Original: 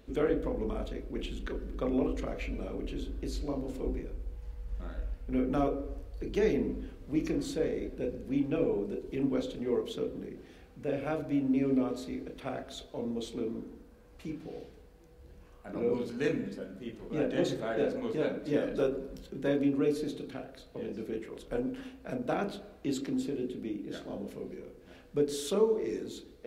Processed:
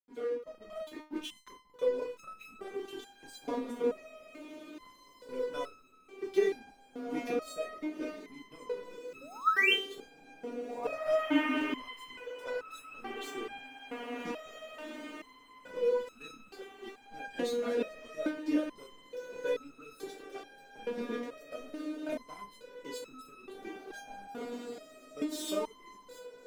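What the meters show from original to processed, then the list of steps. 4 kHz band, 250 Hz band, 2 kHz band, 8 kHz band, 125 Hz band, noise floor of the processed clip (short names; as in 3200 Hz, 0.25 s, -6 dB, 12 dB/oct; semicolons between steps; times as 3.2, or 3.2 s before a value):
+5.5 dB, -6.5 dB, +7.0 dB, -1.5 dB, under -20 dB, -59 dBFS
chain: painted sound rise, 9.21–9.74, 510–3400 Hz -22 dBFS; HPF 180 Hz 24 dB/oct; in parallel at -2 dB: compressor, threshold -36 dBFS, peak gain reduction 15.5 dB; on the sum: reverb removal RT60 1.2 s; Schroeder reverb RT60 0.62 s, combs from 33 ms, DRR 13.5 dB; crossover distortion -43 dBFS; AGC gain up to 16 dB; on a send: diffused feedback echo 1.872 s, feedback 52%, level -9 dB; on the sum: stepped resonator 2.3 Hz 240–1300 Hz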